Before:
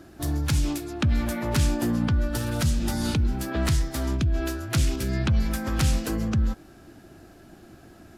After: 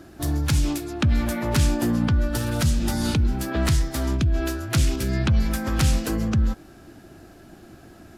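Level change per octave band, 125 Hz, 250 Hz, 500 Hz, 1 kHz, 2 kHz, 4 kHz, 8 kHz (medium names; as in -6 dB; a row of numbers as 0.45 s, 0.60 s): +2.5 dB, +2.5 dB, +2.5 dB, +2.5 dB, +2.5 dB, +2.5 dB, +2.5 dB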